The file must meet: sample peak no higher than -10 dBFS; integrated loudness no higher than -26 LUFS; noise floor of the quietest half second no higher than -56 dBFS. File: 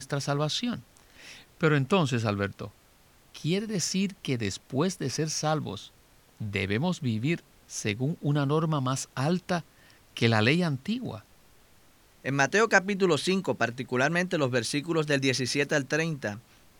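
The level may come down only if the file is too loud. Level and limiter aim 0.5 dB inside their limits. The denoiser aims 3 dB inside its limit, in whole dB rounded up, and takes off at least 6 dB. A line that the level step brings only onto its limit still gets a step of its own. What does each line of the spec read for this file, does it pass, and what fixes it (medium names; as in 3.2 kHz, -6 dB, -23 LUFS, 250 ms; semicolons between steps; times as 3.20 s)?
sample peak -6.0 dBFS: fail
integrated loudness -27.5 LUFS: pass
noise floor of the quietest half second -59 dBFS: pass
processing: peak limiter -10.5 dBFS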